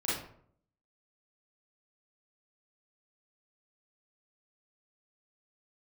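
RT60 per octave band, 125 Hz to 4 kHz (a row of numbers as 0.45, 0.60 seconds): 0.80, 0.70, 0.65, 0.60, 0.45, 0.35 seconds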